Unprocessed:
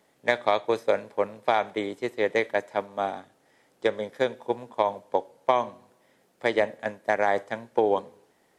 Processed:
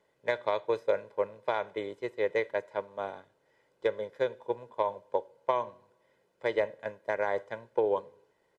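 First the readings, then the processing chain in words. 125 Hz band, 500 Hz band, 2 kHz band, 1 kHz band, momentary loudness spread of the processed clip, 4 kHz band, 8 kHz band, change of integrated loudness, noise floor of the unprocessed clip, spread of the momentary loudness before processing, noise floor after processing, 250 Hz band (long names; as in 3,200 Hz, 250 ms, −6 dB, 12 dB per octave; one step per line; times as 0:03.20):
−6.0 dB, −4.5 dB, −7.5 dB, −7.5 dB, 8 LU, −9.0 dB, can't be measured, −5.5 dB, −66 dBFS, 7 LU, −72 dBFS, −9.0 dB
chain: low-pass filter 3,100 Hz 6 dB per octave
comb filter 2 ms, depth 56%
level −7 dB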